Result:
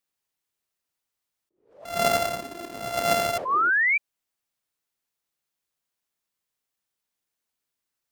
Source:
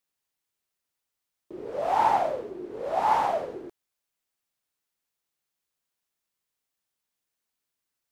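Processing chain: 1.85–3.38 s: sorted samples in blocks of 64 samples; 3.45–3.98 s: painted sound rise 1–2.4 kHz -21 dBFS; attacks held to a fixed rise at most 120 dB/s

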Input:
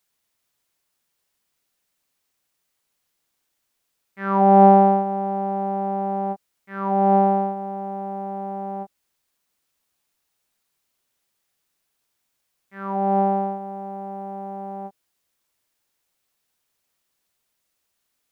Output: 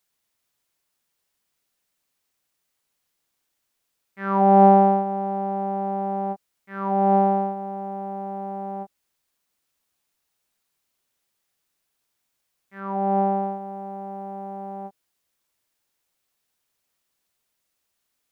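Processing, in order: 12.80–13.43 s: distance through air 59 m; trim -1.5 dB

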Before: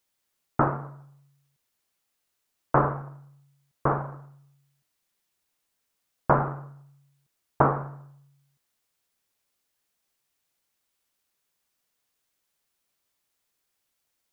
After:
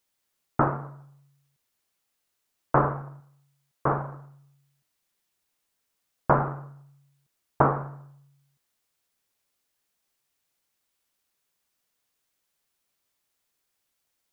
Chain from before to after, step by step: 3.20–3.87 s: bass shelf 220 Hz -8 dB

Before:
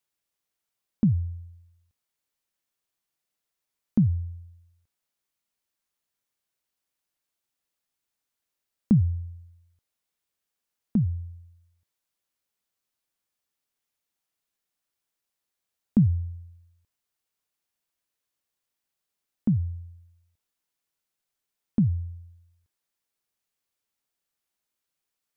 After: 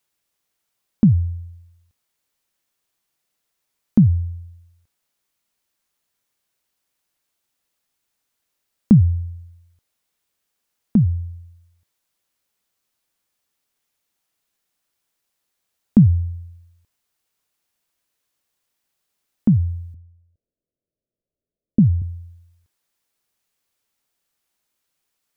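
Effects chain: 19.94–22.02 s: steep low-pass 650 Hz 96 dB/octave; trim +8 dB

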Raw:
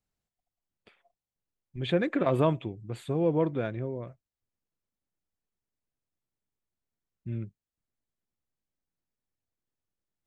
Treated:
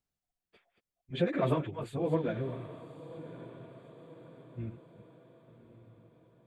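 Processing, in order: chunks repeated in reverse 265 ms, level -10 dB; plain phase-vocoder stretch 0.63×; echo that smears into a reverb 1137 ms, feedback 47%, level -14.5 dB

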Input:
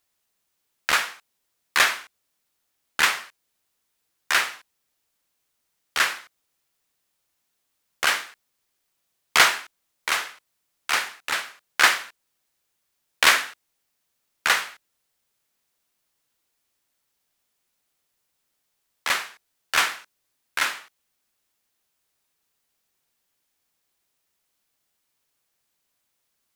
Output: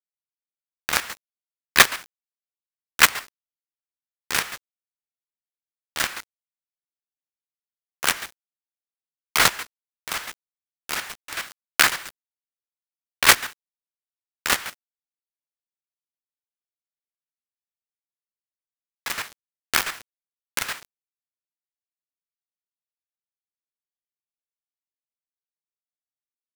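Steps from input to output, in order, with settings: band-stop 6.6 kHz, Q 25; companded quantiser 2-bit; square tremolo 7.3 Hz, depth 65%, duty 30%; trim -1 dB

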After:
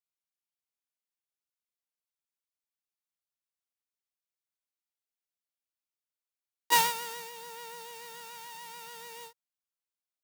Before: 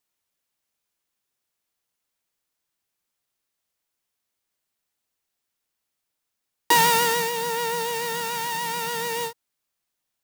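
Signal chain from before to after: band-stop 1.8 kHz, Q 18; gate -16 dBFS, range -16 dB; bass shelf 420 Hz -10 dB

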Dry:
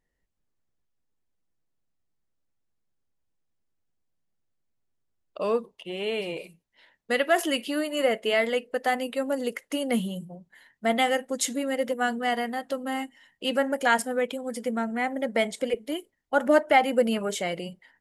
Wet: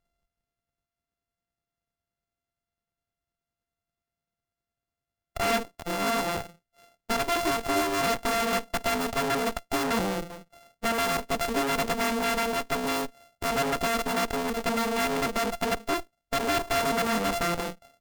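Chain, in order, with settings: sorted samples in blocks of 64 samples; peak limiter -19.5 dBFS, peak gain reduction 10.5 dB; Chebyshev shaper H 8 -8 dB, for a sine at -19.5 dBFS

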